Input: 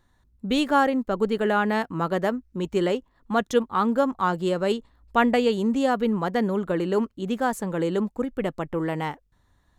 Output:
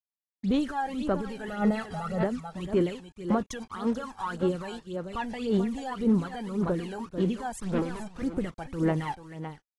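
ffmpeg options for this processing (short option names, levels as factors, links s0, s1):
-filter_complex "[0:a]asettb=1/sr,asplit=3[s0][s1][s2];[s0]atrim=end=3.724[s3];[s1]atrim=start=3.72:end=4.43,asetpts=PTS-STARTPTS,afade=t=in:d=0.004:c=qsin,afade=t=out:st=0.706:d=0.004:c=qsin,equalizer=f=210:t=o:w=2:g=-10[s4];[s2]atrim=start=4.426[s5];[s3][s4]acrossfade=d=0.004:c1=hsin:c2=qsin[s6];[s6][s5]acrossfade=d=0.004:c1=qsin:c2=hsin,asettb=1/sr,asplit=3[s7][s8][s9];[s7]atrim=end=7.524[s10];[s8]atrim=start=7.52:end=8.22,asetpts=PTS-STARTPTS,afade=t=in:d=0.004:c=qsin,afade=t=out:st=0.696:d=0.004:c=qsin,asoftclip=type=hard:threshold=0.0316[s11];[s9]atrim=start=8.216[s12];[s10][s11]acrossfade=d=0.004:c1=hsin:c2=qsin[s13];[s13][s12]acrossfade=d=0.004:c1=qsin:c2=hsin,lowshelf=f=290:g=2.5,asoftclip=type=tanh:threshold=0.335,acrusher=bits=6:mix=0:aa=0.5,asettb=1/sr,asplit=3[s14][s15][s16];[s14]atrim=end=1.484[s17];[s15]atrim=start=1.48:end=2.23,asetpts=PTS-STARTPTS,afade=t=in:d=0.004:c=qsin,afade=t=out:st=0.746:d=0.004:c=qsin,aecho=1:1:1.5:0.96,atrim=end_sample=33075[s18];[s16]atrim=start=2.226[s19];[s17][s18]acrossfade=d=0.004:c1=hsin:c2=qsin[s20];[s20][s19]acrossfade=d=0.004:c1=qsin:c2=hsin,aecho=1:1:439:0.237,alimiter=limit=0.0944:level=0:latency=1:release=45,aphaser=in_gain=1:out_gain=1:delay=1.3:decay=0.75:speed=1.8:type=sinusoidal,volume=0.447" -ar 24000 -c:a aac -b:a 32k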